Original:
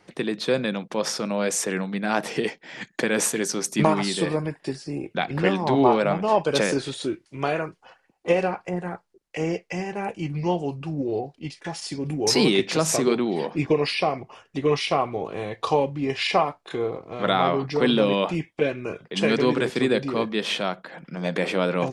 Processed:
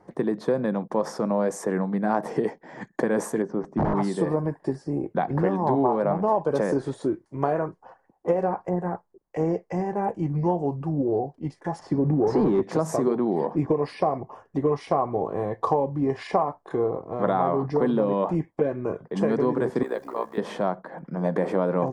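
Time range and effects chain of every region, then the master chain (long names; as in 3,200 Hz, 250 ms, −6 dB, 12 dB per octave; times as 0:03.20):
0:03.42–0:03.95: notch filter 4,100 Hz, Q 14 + wrap-around overflow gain 14.5 dB + head-to-tape spacing loss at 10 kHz 42 dB
0:11.79–0:12.63: high-pass filter 77 Hz + leveller curve on the samples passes 2 + head-to-tape spacing loss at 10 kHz 25 dB
0:19.83–0:20.38: high-pass filter 610 Hz + bit-depth reduction 8 bits, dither none + amplitude modulation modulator 63 Hz, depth 55%
whole clip: flat-topped bell 1,900 Hz −15 dB 1.3 octaves; downward compressor, threshold −22 dBFS; high shelf with overshoot 2,500 Hz −13 dB, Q 3; level +3 dB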